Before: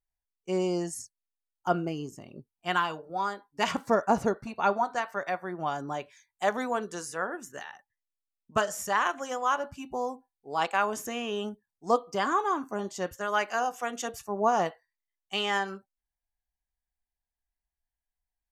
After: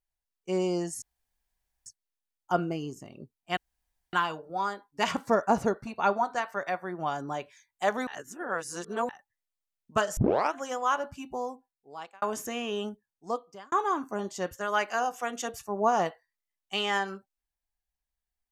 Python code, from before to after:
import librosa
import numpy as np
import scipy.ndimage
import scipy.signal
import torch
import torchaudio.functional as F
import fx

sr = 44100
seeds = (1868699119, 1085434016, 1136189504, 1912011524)

y = fx.edit(x, sr, fx.insert_room_tone(at_s=1.02, length_s=0.84),
    fx.insert_room_tone(at_s=2.73, length_s=0.56),
    fx.reverse_span(start_s=6.67, length_s=1.02),
    fx.tape_start(start_s=8.77, length_s=0.36),
    fx.fade_out_span(start_s=9.8, length_s=1.02),
    fx.fade_out_span(start_s=11.42, length_s=0.9), tone=tone)